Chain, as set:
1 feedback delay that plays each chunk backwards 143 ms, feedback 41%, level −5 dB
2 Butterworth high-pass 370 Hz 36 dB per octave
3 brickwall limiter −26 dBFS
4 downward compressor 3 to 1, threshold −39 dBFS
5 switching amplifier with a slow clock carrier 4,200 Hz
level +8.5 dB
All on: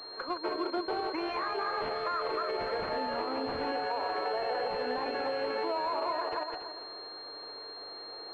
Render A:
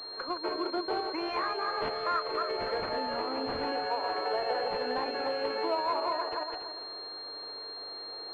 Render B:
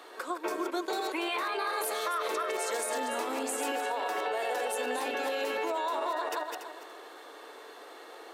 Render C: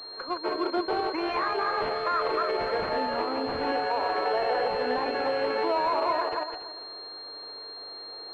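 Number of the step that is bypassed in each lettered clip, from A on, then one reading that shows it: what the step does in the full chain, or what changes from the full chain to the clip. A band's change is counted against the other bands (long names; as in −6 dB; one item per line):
3, change in crest factor +2.5 dB
5, 2 kHz band +3.5 dB
4, average gain reduction 4.0 dB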